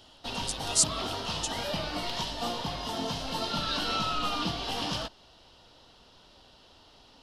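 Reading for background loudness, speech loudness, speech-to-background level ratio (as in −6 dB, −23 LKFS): −32.0 LKFS, −29.5 LKFS, 2.5 dB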